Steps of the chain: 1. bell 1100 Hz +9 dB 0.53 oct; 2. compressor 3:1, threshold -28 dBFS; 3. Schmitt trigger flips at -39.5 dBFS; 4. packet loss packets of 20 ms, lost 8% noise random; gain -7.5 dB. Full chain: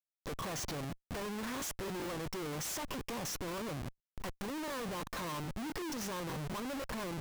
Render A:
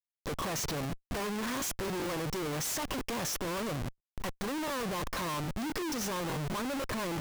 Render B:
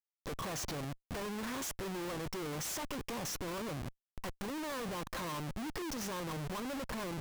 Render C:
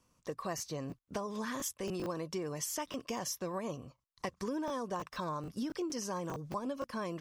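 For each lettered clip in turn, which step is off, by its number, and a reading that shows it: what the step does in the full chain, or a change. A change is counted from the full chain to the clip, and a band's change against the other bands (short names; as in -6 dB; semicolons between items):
2, mean gain reduction 4.0 dB; 4, crest factor change -5.0 dB; 3, distortion 0 dB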